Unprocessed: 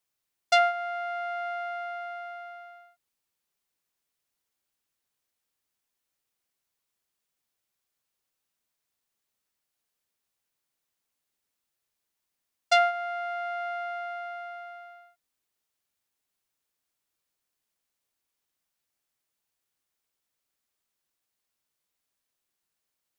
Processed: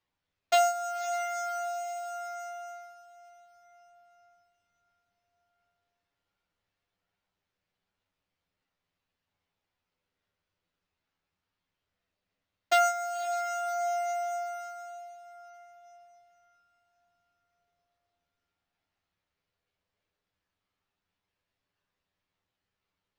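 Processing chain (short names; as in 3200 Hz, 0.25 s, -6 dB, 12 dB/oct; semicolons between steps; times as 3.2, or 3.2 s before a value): low shelf 500 Hz +7.5 dB; careless resampling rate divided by 6×, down none, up zero stuff; air absorption 220 m; diffused feedback echo 0.554 s, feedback 44%, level -14.5 dB; chorus voices 6, 0.13 Hz, delay 11 ms, depth 1.2 ms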